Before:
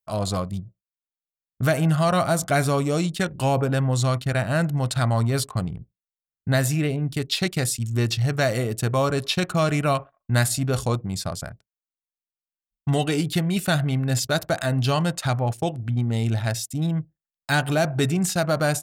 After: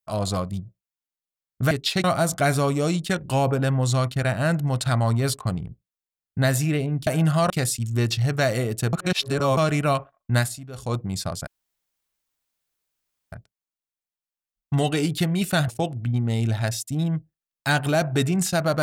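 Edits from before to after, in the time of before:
1.71–2.14 s: swap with 7.17–7.50 s
8.93–9.57 s: reverse
10.37–10.97 s: dip -16 dB, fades 0.30 s quadratic
11.47 s: insert room tone 1.85 s
13.83–15.51 s: delete

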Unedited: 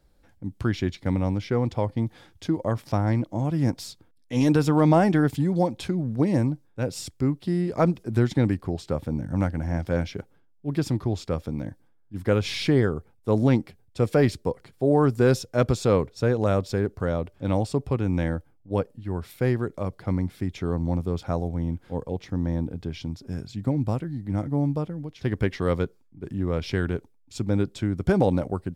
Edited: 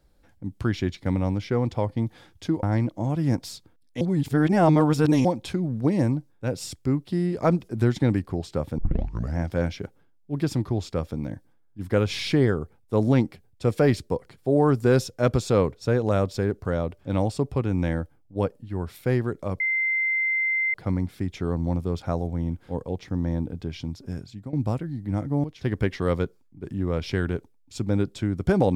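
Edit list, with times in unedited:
2.63–2.98 s: delete
4.36–5.60 s: reverse
9.13 s: tape start 0.59 s
19.95 s: add tone 2.08 kHz -21 dBFS 1.14 s
23.30–23.74 s: fade out, to -16.5 dB
24.65–25.04 s: delete

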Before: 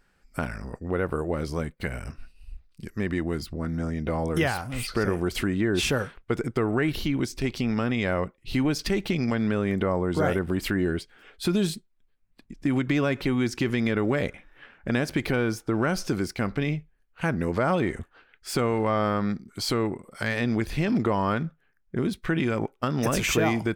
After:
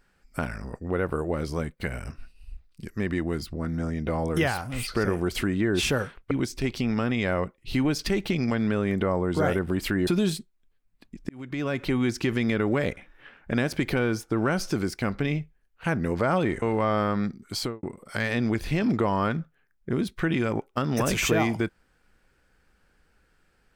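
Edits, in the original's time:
6.31–7.11 s: delete
10.87–11.44 s: delete
12.66–13.28 s: fade in
17.99–18.68 s: delete
19.62–19.89 s: studio fade out

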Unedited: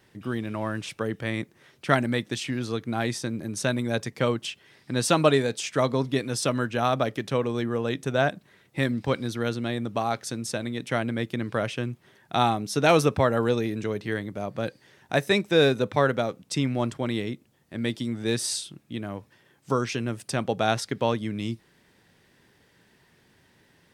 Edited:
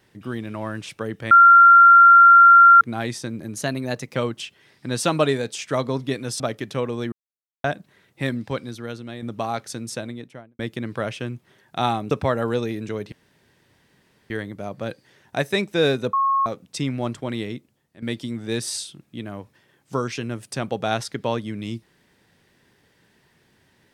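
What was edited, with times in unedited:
1.31–2.81 s: bleep 1.38 kHz -6.5 dBFS
3.55–4.21 s: speed 108%
6.45–6.97 s: delete
7.69–8.21 s: mute
8.90–9.79 s: fade out quadratic, to -6.5 dB
10.48–11.16 s: studio fade out
12.68–13.06 s: delete
14.07 s: insert room tone 1.18 s
15.90–16.23 s: bleep 1.09 kHz -16.5 dBFS
17.33–17.79 s: fade out, to -12.5 dB

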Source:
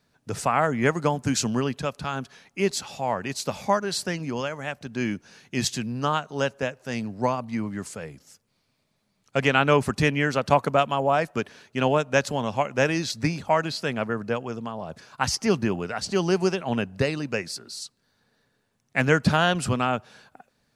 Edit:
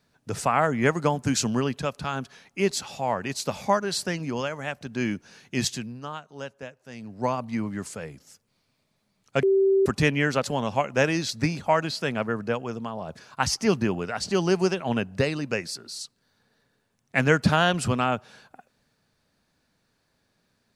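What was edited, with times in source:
5.61–7.38 s: dip -11.5 dB, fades 0.40 s
9.43–9.86 s: bleep 388 Hz -16.5 dBFS
10.43–12.24 s: delete

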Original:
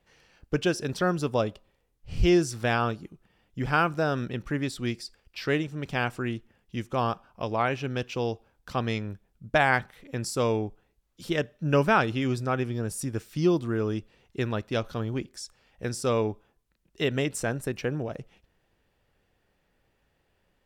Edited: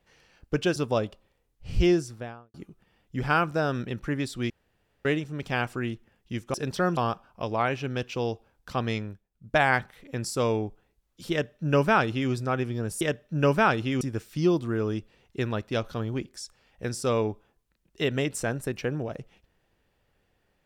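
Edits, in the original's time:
0.76–1.19 s: move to 6.97 s
2.19–2.97 s: studio fade out
4.93–5.48 s: room tone
9.01–9.57 s: dip -18.5 dB, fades 0.28 s
11.31–12.31 s: copy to 13.01 s

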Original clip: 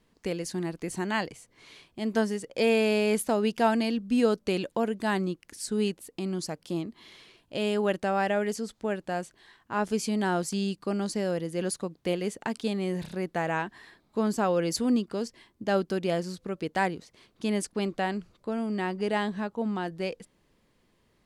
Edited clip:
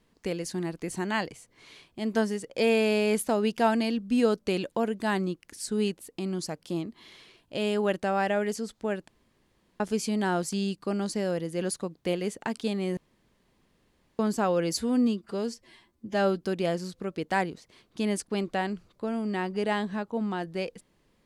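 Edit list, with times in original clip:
9.08–9.80 s: room tone
12.97–14.19 s: room tone
14.75–15.86 s: stretch 1.5×

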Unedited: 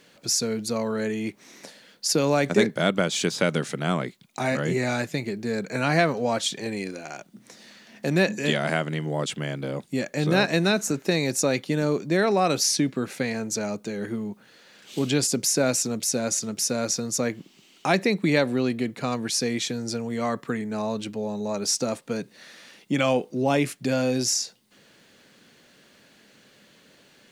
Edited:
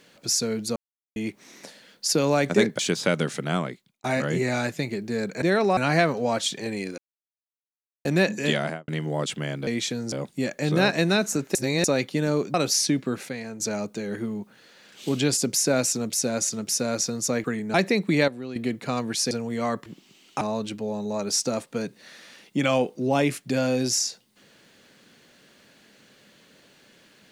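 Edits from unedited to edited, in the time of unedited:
0.76–1.16 s: mute
2.79–3.14 s: delete
3.86–4.39 s: fade out
6.98–8.05 s: mute
8.58–8.88 s: studio fade out
11.10–11.39 s: reverse
12.09–12.44 s: move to 5.77 s
13.19–13.50 s: gain -6.5 dB
17.34–17.89 s: swap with 20.46–20.76 s
18.43–18.71 s: gain -11 dB
19.46–19.91 s: move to 9.67 s

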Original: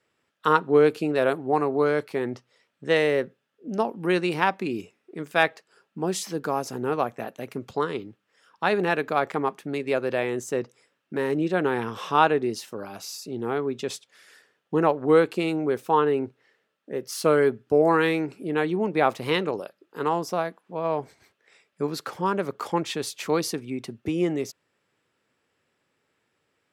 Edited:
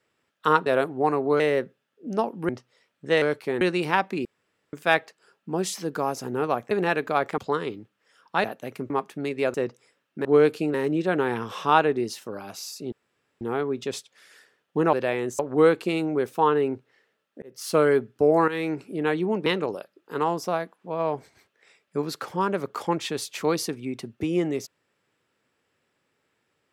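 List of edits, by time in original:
0.66–1.15 s: move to 11.20 s
1.89–2.28 s: swap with 3.01–4.10 s
4.74–5.22 s: room tone
7.20–7.66 s: swap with 8.72–9.39 s
10.03–10.49 s: move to 14.90 s
13.38 s: insert room tone 0.49 s
16.93–17.22 s: fade in
17.99–18.24 s: fade in, from -13 dB
18.97–19.31 s: delete

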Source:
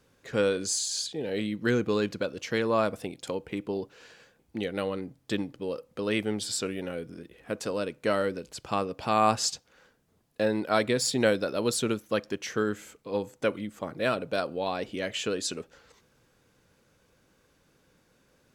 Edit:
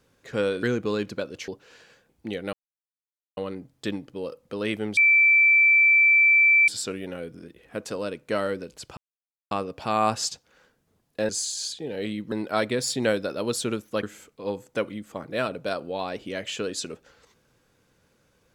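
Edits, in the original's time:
0.63–1.66 s: move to 10.50 s
2.51–3.78 s: delete
4.83 s: insert silence 0.84 s
6.43 s: add tone 2.33 kHz -14 dBFS 1.71 s
8.72 s: insert silence 0.54 s
12.21–12.70 s: delete

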